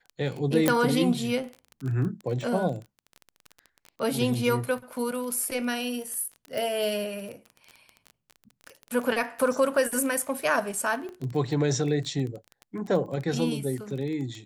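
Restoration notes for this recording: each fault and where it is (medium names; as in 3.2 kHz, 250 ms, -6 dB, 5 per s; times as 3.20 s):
crackle 17 per s -32 dBFS
0.68 s: pop -6 dBFS
6.58 s: pop
11.09 s: pop -28 dBFS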